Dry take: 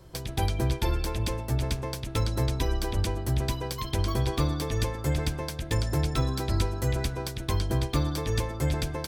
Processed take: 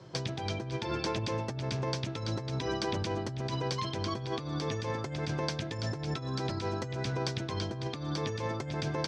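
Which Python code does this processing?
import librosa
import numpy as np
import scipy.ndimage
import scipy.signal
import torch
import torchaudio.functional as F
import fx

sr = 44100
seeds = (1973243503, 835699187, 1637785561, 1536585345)

y = scipy.signal.sosfilt(scipy.signal.ellip(3, 1.0, 60, [120.0, 5900.0], 'bandpass', fs=sr, output='sos'), x)
y = fx.over_compress(y, sr, threshold_db=-34.0, ratio=-1.0)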